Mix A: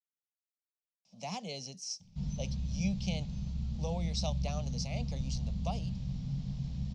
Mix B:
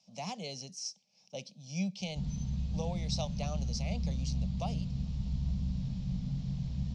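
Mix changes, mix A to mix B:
speech: entry −1.05 s
reverb: on, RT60 2.9 s

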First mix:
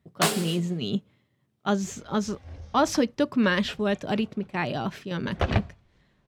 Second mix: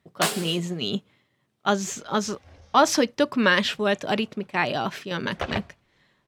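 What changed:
speech +6.5 dB
master: add low-shelf EQ 310 Hz −11.5 dB

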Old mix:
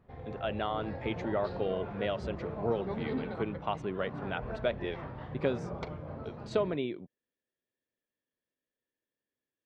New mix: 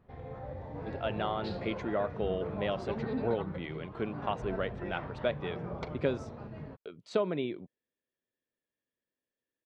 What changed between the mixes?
speech: entry +0.60 s
second sound +8.5 dB

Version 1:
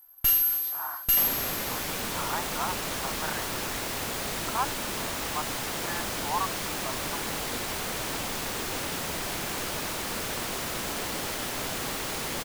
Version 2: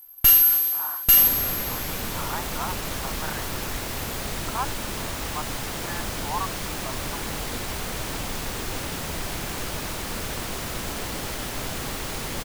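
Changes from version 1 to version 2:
first sound +7.5 dB
second sound: add low-shelf EQ 120 Hz +12 dB

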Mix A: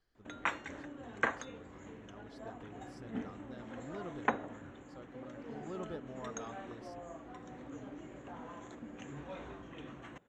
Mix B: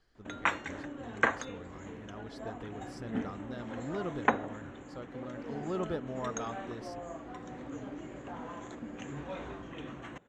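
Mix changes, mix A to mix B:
speech +8.5 dB
background +5.0 dB

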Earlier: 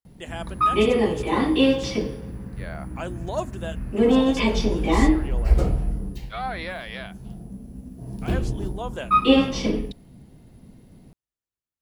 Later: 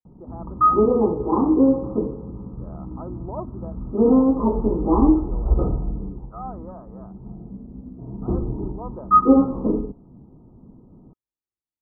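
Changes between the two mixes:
background +4.5 dB
master: add Chebyshev low-pass with heavy ripple 1,300 Hz, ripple 6 dB

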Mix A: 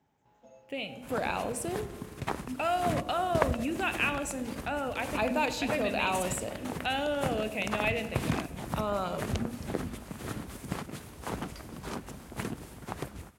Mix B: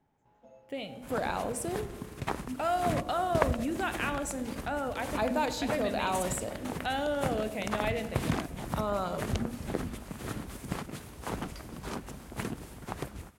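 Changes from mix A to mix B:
speech: add parametric band 2,600 Hz −11.5 dB 0.3 octaves
first sound: add high-shelf EQ 3,700 Hz −10.5 dB
master: remove high-pass filter 48 Hz

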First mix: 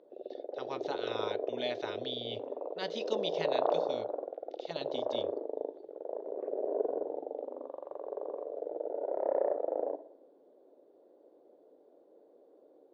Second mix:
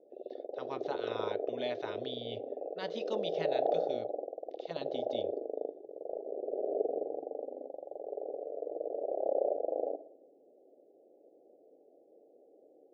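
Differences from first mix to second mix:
speech: add high-shelf EQ 3,000 Hz −8.5 dB
background: add Chebyshev low-pass filter 810 Hz, order 8

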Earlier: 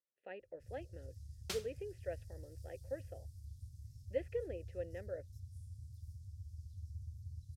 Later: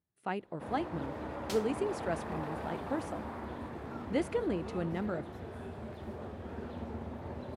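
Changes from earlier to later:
speech: remove formant filter e
first sound: remove Chebyshev band-stop filter 110–5,300 Hz, order 4

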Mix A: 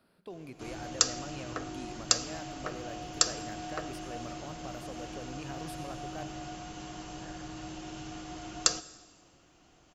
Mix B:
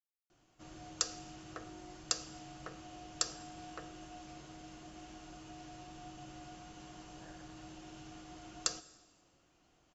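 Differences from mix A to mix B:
speech: muted
first sound −9.0 dB
second sound −6.0 dB

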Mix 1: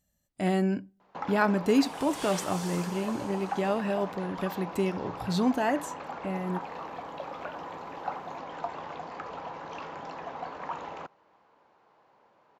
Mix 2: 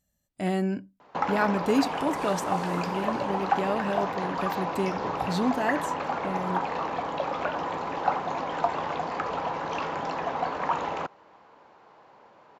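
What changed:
first sound +9.5 dB
second sound −9.0 dB
reverb: off

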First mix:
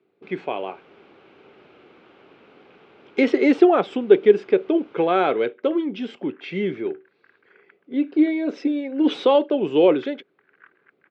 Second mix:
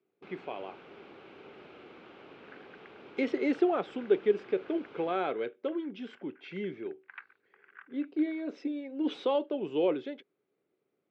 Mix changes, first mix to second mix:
speech −12.0 dB
second sound: entry −2.85 s

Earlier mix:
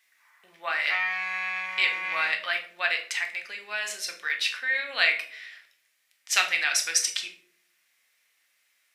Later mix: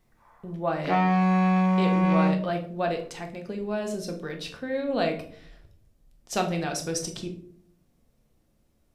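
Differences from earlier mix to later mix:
speech −8.0 dB
master: remove high-pass with resonance 2,000 Hz, resonance Q 3

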